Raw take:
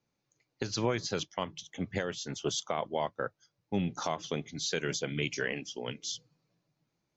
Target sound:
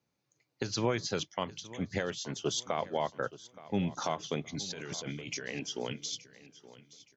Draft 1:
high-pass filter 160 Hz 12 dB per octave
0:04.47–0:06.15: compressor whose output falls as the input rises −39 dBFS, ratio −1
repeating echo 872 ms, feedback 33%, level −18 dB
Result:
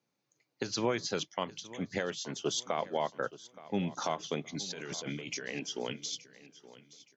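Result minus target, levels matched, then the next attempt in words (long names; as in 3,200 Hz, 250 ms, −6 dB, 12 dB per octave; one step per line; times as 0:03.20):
125 Hz band −3.5 dB
high-pass filter 50 Hz 12 dB per octave
0:04.47–0:06.15: compressor whose output falls as the input rises −39 dBFS, ratio −1
repeating echo 872 ms, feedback 33%, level −18 dB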